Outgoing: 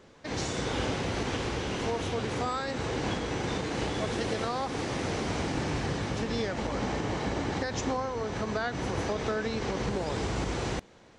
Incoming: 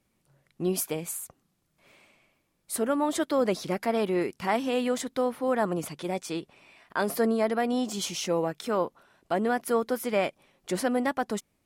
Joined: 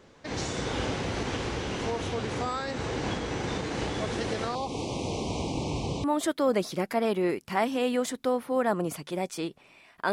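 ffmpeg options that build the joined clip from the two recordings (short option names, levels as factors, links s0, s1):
-filter_complex "[0:a]asettb=1/sr,asplit=3[s0][s1][s2];[s0]atrim=end=4.554[s3];[s1]atrim=start=4.55:end=6.04,asetpts=PTS-STARTPTS,afade=t=in:d=0.004:c=qsin,afade=t=out:st=1.486:d=0.004:c=qsin,asuperstop=centerf=1600:order=8:qfactor=1.3[s4];[s2]atrim=start=6.036[s5];[s3][s4]acrossfade=d=0.004:c1=hsin:c2=qsin[s6];[s6][s5]acrossfade=d=0.004:c1=qsin:c2=hsin,apad=whole_dur=10.12,atrim=end=10.12,atrim=end=6.042[s7];[1:a]atrim=start=2.958:end=7.04[s8];[s7][s8]acrossfade=d=0.004:c1=hsin:c2=hsin"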